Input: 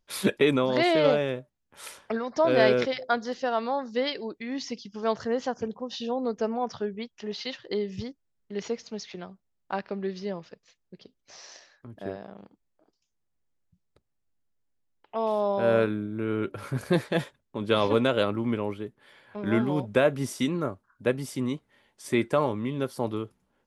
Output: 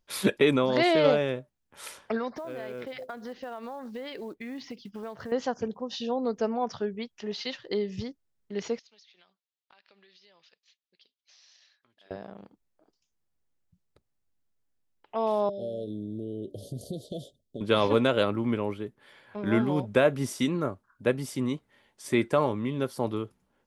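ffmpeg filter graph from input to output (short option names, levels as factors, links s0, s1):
-filter_complex "[0:a]asettb=1/sr,asplit=3[s0][s1][s2];[s0]atrim=end=2.364[s3];[s1]atrim=start=2.36:end=5.32,asetpts=PTS-STARTPTS,afade=t=in:d=0.004:c=qsin,afade=t=out:st=2.956:d=0.004:c=qsin,lowpass=3000,acompressor=threshold=0.02:ratio=10:attack=3.2:release=140:knee=1:detection=peak,acrusher=bits=7:mode=log:mix=0:aa=0.000001[s4];[s2]atrim=start=5.316[s5];[s3][s4]acrossfade=d=0.004:c1=hsin:c2=qsin[s6];[s6][s5]acrossfade=d=0.004:c1=qsin:c2=hsin,asettb=1/sr,asplit=3[s7][s8][s9];[s7]atrim=end=8.794[s10];[s8]atrim=start=8.79:end=12.11,asetpts=PTS-STARTPTS,afade=t=in:d=0.004:c=qsin,afade=t=out:st=3.316:d=0.004:c=qsin,bandpass=f=3600:t=q:w=1.7,acompressor=threshold=0.00178:ratio=10:attack=3.2:release=140:knee=1:detection=peak[s11];[s9]atrim=start=12.106[s12];[s10][s11]acrossfade=d=0.004:c1=hsin:c2=qsin[s13];[s13][s12]acrossfade=d=0.004:c1=qsin:c2=hsin,asettb=1/sr,asplit=3[s14][s15][s16];[s14]atrim=end=15.494[s17];[s15]atrim=start=15.49:end=17.61,asetpts=PTS-STARTPTS,afade=t=in:d=0.004:c=qsin,afade=t=out:st=2.116:d=0.004:c=qsin,acompressor=threshold=0.0282:ratio=6:attack=3.2:release=140:knee=1:detection=peak,asuperstop=centerf=1500:order=20:qfactor=0.61[s18];[s16]atrim=start=17.606[s19];[s17][s18]acrossfade=d=0.004:c1=hsin:c2=qsin[s20];[s20][s19]acrossfade=d=0.004:c1=qsin:c2=hsin"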